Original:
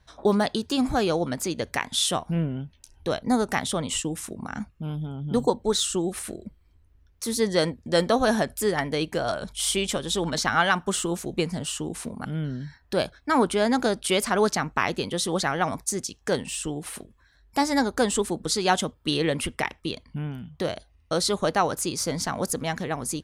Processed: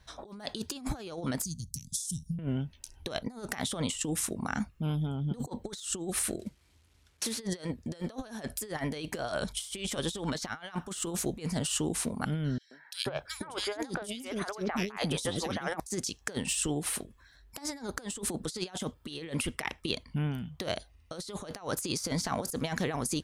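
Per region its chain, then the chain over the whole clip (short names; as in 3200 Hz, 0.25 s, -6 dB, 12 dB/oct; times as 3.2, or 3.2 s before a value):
1.44–2.39 elliptic band-stop 160–5900 Hz, stop band 60 dB + mismatched tape noise reduction decoder only
6.39–7.4 CVSD 64 kbps + HPF 87 Hz + bell 3300 Hz +2.5 dB 2.2 oct
12.58–15.8 notch 4300 Hz, Q 15 + three bands offset in time highs, mids, lows 0.13/0.48 s, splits 420/2700 Hz + mismatched tape noise reduction decoder only
whole clip: high shelf 2300 Hz +4.5 dB; negative-ratio compressor -29 dBFS, ratio -0.5; gain -4.5 dB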